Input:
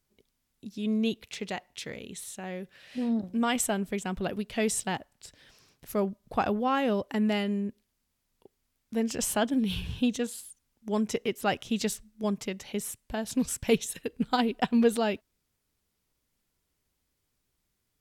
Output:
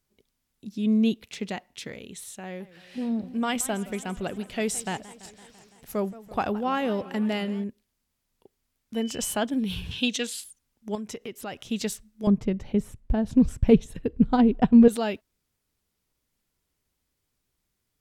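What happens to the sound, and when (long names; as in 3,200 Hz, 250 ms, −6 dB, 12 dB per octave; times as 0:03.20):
0:00.67–0:01.88: parametric band 230 Hz +6.5 dB 0.99 octaves
0:02.43–0:07.64: feedback echo with a swinging delay time 168 ms, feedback 71%, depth 198 cents, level −18 dB
0:08.94–0:09.34: steady tone 3,000 Hz −42 dBFS
0:09.91–0:10.44: meter weighting curve D
0:10.95–0:11.60: downward compressor 2.5 to 1, threshold −35 dBFS
0:12.27–0:14.88: spectral tilt −4.5 dB per octave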